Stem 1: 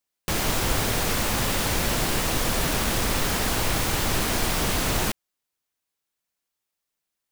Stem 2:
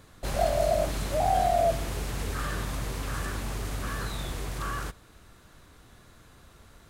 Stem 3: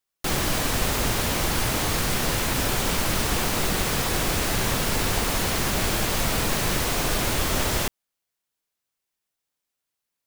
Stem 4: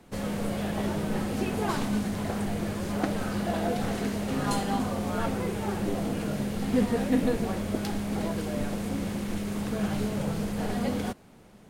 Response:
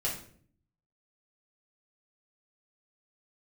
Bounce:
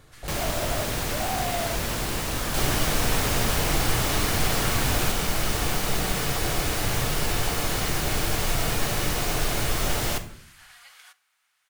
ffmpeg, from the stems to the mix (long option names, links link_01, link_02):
-filter_complex "[0:a]volume=-4.5dB[link_01];[1:a]asoftclip=type=tanh:threshold=-29.5dB,volume=-2.5dB,asplit=2[link_02][link_03];[link_03]volume=-9.5dB[link_04];[2:a]adelay=2300,volume=-5dB,asplit=2[link_05][link_06];[link_06]volume=-8.5dB[link_07];[3:a]highpass=frequency=1300:width=0.5412,highpass=frequency=1300:width=1.3066,volume=-8dB,asplit=2[link_08][link_09];[link_09]volume=-18dB[link_10];[4:a]atrim=start_sample=2205[link_11];[link_04][link_07][link_10]amix=inputs=3:normalize=0[link_12];[link_12][link_11]afir=irnorm=-1:irlink=0[link_13];[link_01][link_02][link_05][link_08][link_13]amix=inputs=5:normalize=0"